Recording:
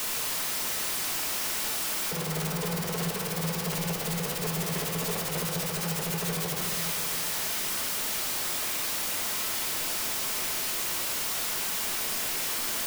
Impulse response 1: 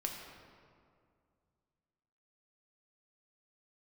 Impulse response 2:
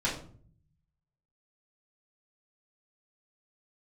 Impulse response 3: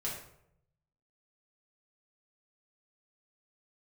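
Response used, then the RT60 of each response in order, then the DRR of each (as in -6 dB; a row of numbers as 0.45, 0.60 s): 1; 2.2, 0.50, 0.75 s; 0.5, -8.0, -6.0 dB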